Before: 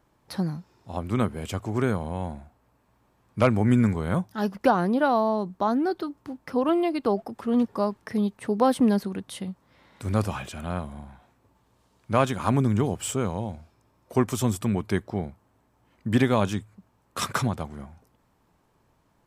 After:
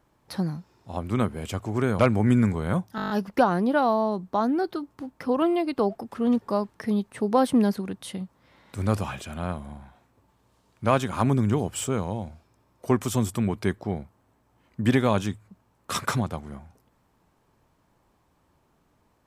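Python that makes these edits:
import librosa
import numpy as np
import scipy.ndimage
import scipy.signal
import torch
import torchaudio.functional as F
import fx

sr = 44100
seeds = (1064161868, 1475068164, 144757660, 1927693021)

y = fx.edit(x, sr, fx.cut(start_s=1.99, length_s=1.41),
    fx.stutter(start_s=4.37, slice_s=0.02, count=8), tone=tone)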